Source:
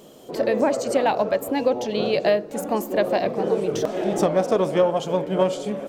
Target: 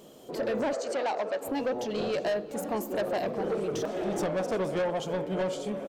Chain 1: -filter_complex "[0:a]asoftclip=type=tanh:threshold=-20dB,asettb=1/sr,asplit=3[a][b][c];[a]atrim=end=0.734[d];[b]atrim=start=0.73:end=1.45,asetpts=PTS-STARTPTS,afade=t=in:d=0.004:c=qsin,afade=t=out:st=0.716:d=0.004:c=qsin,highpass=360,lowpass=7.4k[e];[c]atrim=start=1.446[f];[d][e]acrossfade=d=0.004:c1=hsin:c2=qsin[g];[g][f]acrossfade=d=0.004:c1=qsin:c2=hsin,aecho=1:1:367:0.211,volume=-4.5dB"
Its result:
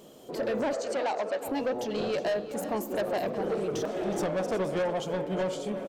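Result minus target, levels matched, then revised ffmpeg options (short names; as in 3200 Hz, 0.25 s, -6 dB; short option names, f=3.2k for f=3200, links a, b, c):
echo-to-direct +7.5 dB
-filter_complex "[0:a]asoftclip=type=tanh:threshold=-20dB,asettb=1/sr,asplit=3[a][b][c];[a]atrim=end=0.734[d];[b]atrim=start=0.73:end=1.45,asetpts=PTS-STARTPTS,afade=t=in:d=0.004:c=qsin,afade=t=out:st=0.716:d=0.004:c=qsin,highpass=360,lowpass=7.4k[e];[c]atrim=start=1.446[f];[d][e]acrossfade=d=0.004:c1=hsin:c2=qsin[g];[g][f]acrossfade=d=0.004:c1=qsin:c2=hsin,aecho=1:1:367:0.0891,volume=-4.5dB"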